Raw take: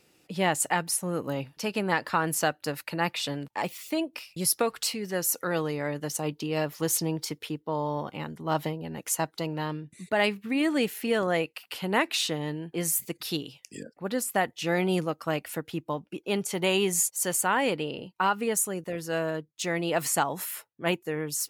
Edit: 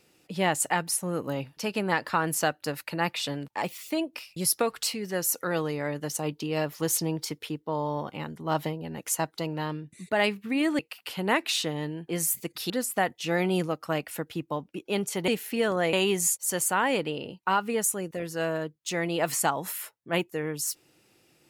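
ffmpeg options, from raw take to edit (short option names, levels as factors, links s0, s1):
-filter_complex "[0:a]asplit=5[s0][s1][s2][s3][s4];[s0]atrim=end=10.792[s5];[s1]atrim=start=11.438:end=13.352[s6];[s2]atrim=start=14.078:end=16.662[s7];[s3]atrim=start=10.788:end=11.442[s8];[s4]atrim=start=16.658[s9];[s5][s6]acrossfade=d=0.004:c1=hsin:c2=hsin[s10];[s10][s7]acrossfade=d=0.004:c1=hsin:c2=hsin[s11];[s11][s8]acrossfade=d=0.004:c1=hsin:c2=hsin[s12];[s12][s9]acrossfade=d=0.004:c1=hsin:c2=hsin"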